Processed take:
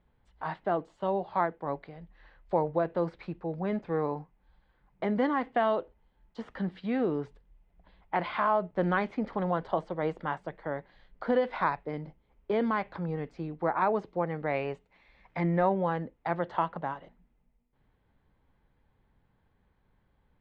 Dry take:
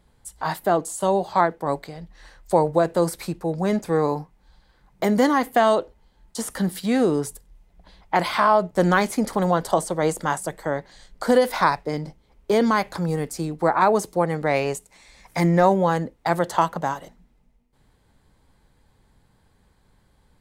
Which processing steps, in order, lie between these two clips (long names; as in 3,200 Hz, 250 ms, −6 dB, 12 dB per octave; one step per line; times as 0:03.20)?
low-pass filter 3,100 Hz 24 dB per octave
level −9 dB